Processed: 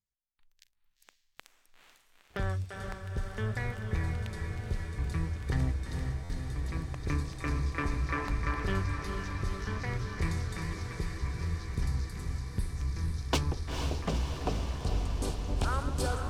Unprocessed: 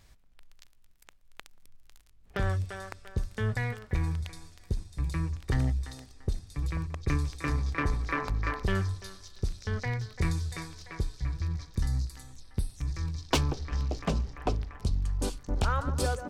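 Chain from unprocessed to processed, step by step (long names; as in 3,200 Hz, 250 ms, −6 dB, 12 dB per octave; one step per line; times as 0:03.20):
noise reduction from a noise print of the clip's start 14 dB
noise gate with hold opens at −56 dBFS
feedback delay with all-pass diffusion 468 ms, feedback 76%, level −5.5 dB
buffer that repeats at 0:06.23, samples 512, times 5
level −3.5 dB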